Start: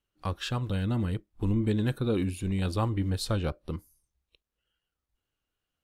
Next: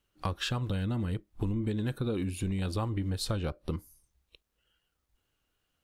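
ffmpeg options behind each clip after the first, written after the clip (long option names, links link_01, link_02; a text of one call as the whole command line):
ffmpeg -i in.wav -af "acompressor=threshold=-36dB:ratio=5,volume=6.5dB" out.wav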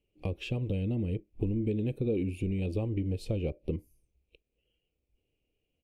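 ffmpeg -i in.wav -af "firequalizer=gain_entry='entry(190,0);entry(450,5);entry(960,-16);entry(1500,-27);entry(2400,2);entry(3700,-14)':delay=0.05:min_phase=1" out.wav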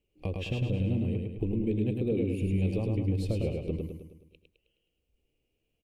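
ffmpeg -i in.wav -af "aecho=1:1:105|210|315|420|525|630|735:0.668|0.334|0.167|0.0835|0.0418|0.0209|0.0104" out.wav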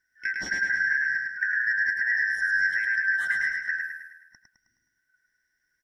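ffmpeg -i in.wav -af "afftfilt=real='real(if(lt(b,272),68*(eq(floor(b/68),0)*2+eq(floor(b/68),1)*0+eq(floor(b/68),2)*3+eq(floor(b/68),3)*1)+mod(b,68),b),0)':imag='imag(if(lt(b,272),68*(eq(floor(b/68),0)*2+eq(floor(b/68),1)*0+eq(floor(b/68),2)*3+eq(floor(b/68),3)*1)+mod(b,68),b),0)':win_size=2048:overlap=0.75,volume=3dB" out.wav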